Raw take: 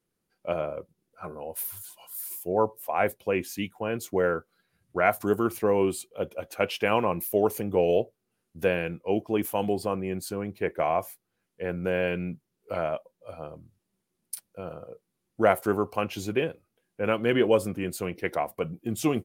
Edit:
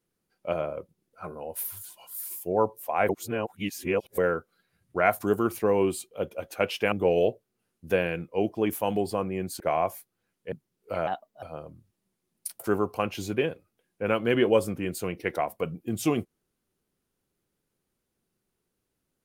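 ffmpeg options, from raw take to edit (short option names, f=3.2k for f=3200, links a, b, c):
-filter_complex "[0:a]asplit=9[a][b][c][d][e][f][g][h][i];[a]atrim=end=3.092[j];[b]atrim=start=3.088:end=4.182,asetpts=PTS-STARTPTS,areverse[k];[c]atrim=start=4.178:end=6.922[l];[d]atrim=start=7.638:end=10.322[m];[e]atrim=start=10.728:end=11.652[n];[f]atrim=start=12.318:end=12.874[o];[g]atrim=start=12.87:end=13.3,asetpts=PTS-STARTPTS,asetrate=53361,aresample=44100[p];[h]atrim=start=13.296:end=14.472[q];[i]atrim=start=15.578[r];[j][k]acrossfade=d=0.004:c1=hsin:c2=hsin[s];[s][l]acrossfade=d=0.004:c1=hsin:c2=hsin[t];[t][m]acrossfade=d=0.004:c1=hsin:c2=hsin[u];[u][n]acrossfade=d=0.004:c1=hsin:c2=hsin[v];[v][o]acrossfade=d=0.004:c1=hsin:c2=hsin[w];[w][p]acrossfade=d=0.004:c1=hsin:c2=hsin[x];[x][q]acrossfade=d=0.004:c1=hsin:c2=hsin[y];[y][r]acrossfade=d=0.004:c1=hsin:c2=hsin"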